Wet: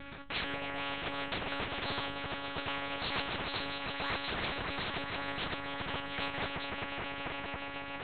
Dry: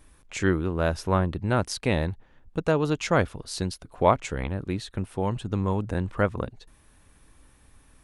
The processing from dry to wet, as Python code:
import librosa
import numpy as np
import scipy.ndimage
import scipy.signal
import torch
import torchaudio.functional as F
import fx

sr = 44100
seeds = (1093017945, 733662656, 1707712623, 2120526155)

p1 = fx.pitch_trill(x, sr, semitones=10.5, every_ms=535)
p2 = fx.over_compress(p1, sr, threshold_db=-31.0, ratio=-0.5)
p3 = p1 + (p2 * 10.0 ** (1.0 / 20.0))
p4 = fx.resonator_bank(p3, sr, root=47, chord='minor', decay_s=0.27)
p5 = fx.vibrato(p4, sr, rate_hz=3.8, depth_cents=10.0)
p6 = p5 + fx.echo_swell(p5, sr, ms=140, loudest=5, wet_db=-17.0, dry=0)
p7 = fx.lpc_monotone(p6, sr, seeds[0], pitch_hz=280.0, order=8)
y = fx.spectral_comp(p7, sr, ratio=4.0)